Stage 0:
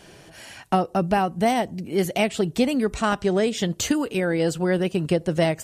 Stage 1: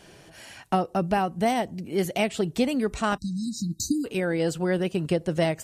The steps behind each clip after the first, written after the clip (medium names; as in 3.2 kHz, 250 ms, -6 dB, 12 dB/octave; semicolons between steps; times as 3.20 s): spectral selection erased 3.18–4.05 s, 330–3800 Hz; trim -3 dB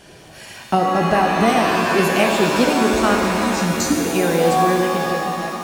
fade out at the end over 1.42 s; pitch-shifted reverb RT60 2.8 s, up +7 st, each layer -2 dB, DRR 1 dB; trim +5.5 dB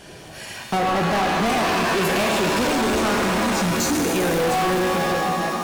hard clipper -21 dBFS, distortion -6 dB; trim +2.5 dB